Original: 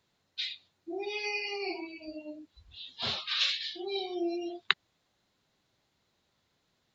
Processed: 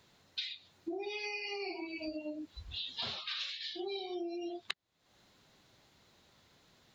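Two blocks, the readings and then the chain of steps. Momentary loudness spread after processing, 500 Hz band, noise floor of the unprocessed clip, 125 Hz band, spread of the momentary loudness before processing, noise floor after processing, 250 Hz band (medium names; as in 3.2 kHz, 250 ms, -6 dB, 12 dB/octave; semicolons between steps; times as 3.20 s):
6 LU, -4.0 dB, -77 dBFS, -2.0 dB, 17 LU, -71 dBFS, -3.0 dB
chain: compression 20:1, threshold -46 dBFS, peak gain reduction 28.5 dB; trim +9.5 dB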